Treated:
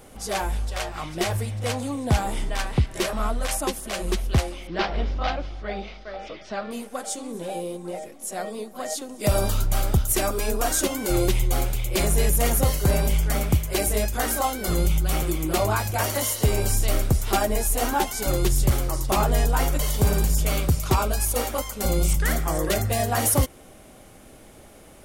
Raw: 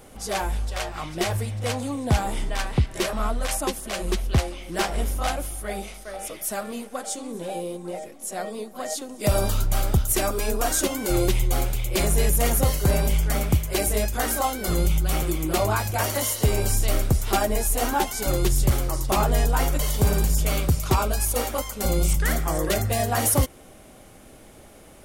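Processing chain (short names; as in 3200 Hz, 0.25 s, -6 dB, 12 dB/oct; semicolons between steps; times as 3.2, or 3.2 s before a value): 4.67–6.71 steep low-pass 4900 Hz 36 dB/oct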